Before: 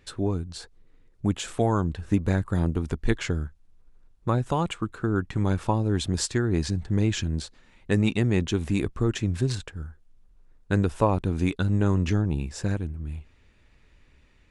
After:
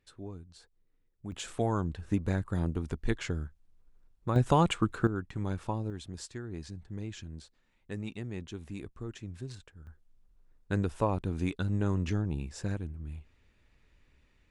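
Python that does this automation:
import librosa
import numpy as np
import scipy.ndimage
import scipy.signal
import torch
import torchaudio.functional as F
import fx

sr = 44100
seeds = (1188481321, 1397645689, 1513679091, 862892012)

y = fx.gain(x, sr, db=fx.steps((0.0, -16.5), (1.32, -6.5), (4.36, 1.5), (5.07, -9.5), (5.9, -16.0), (9.87, -7.0)))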